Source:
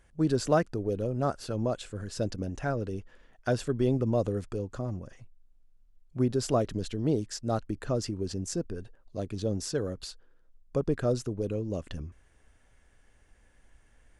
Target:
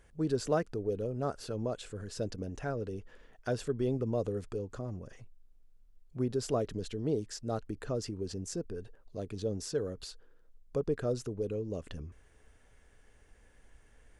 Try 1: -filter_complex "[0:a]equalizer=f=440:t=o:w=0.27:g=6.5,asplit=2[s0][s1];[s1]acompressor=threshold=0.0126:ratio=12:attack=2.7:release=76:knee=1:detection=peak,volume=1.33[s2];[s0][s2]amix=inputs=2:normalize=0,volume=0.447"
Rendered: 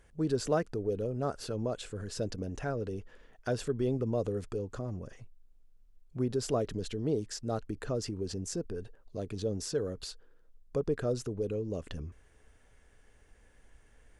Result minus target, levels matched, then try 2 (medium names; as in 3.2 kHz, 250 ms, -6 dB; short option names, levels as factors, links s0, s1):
compression: peak gain reduction -8 dB
-filter_complex "[0:a]equalizer=f=440:t=o:w=0.27:g=6.5,asplit=2[s0][s1];[s1]acompressor=threshold=0.00473:ratio=12:attack=2.7:release=76:knee=1:detection=peak,volume=1.33[s2];[s0][s2]amix=inputs=2:normalize=0,volume=0.447"